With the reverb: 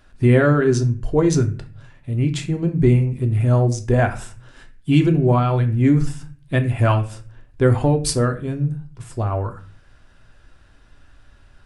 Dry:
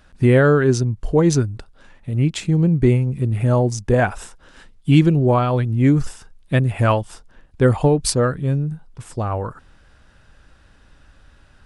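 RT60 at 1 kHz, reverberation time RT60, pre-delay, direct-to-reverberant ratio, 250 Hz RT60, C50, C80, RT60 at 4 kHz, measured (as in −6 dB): 0.35 s, 0.40 s, 3 ms, 5.0 dB, 0.65 s, 13.5 dB, 17.5 dB, 0.30 s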